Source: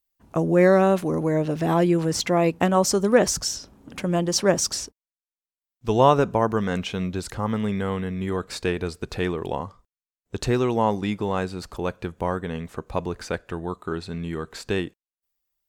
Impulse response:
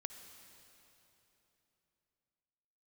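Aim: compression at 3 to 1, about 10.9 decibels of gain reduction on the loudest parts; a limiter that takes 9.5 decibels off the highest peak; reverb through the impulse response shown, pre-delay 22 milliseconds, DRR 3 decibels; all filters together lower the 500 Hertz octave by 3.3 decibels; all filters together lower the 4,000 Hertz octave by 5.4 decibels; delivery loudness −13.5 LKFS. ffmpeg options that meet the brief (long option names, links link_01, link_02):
-filter_complex "[0:a]equalizer=frequency=500:width_type=o:gain=-4,equalizer=frequency=4000:width_type=o:gain=-8,acompressor=threshold=-29dB:ratio=3,alimiter=level_in=2dB:limit=-24dB:level=0:latency=1,volume=-2dB,asplit=2[link_01][link_02];[1:a]atrim=start_sample=2205,adelay=22[link_03];[link_02][link_03]afir=irnorm=-1:irlink=0,volume=0dB[link_04];[link_01][link_04]amix=inputs=2:normalize=0,volume=20.5dB"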